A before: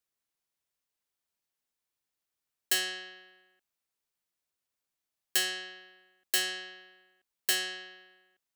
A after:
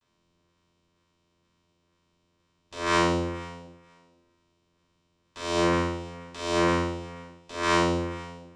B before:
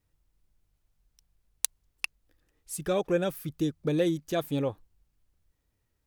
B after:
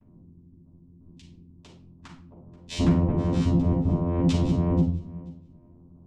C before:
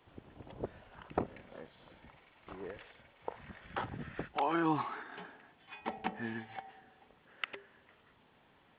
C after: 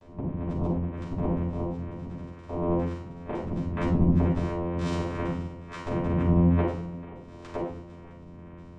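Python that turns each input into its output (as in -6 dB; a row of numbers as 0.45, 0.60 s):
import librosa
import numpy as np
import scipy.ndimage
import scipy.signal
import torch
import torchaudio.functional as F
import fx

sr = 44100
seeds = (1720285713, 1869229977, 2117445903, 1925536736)

y = fx.halfwave_hold(x, sr)
y = fx.over_compress(y, sr, threshold_db=-36.0, ratio=-1.0)
y = fx.filter_lfo_notch(y, sr, shape='saw_up', hz=2.1, low_hz=860.0, high_hz=2800.0, q=0.78)
y = fx.spec_gate(y, sr, threshold_db=-20, keep='strong')
y = fx.vocoder(y, sr, bands=4, carrier='saw', carrier_hz=86.2)
y = fx.echo_feedback(y, sr, ms=483, feedback_pct=16, wet_db=-21)
y = fx.room_shoebox(y, sr, seeds[0], volume_m3=470.0, walls='furnished', distance_m=9.1)
y = y * 10.0 ** (3.5 / 20.0)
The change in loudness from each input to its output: +4.0, +6.5, +11.0 LU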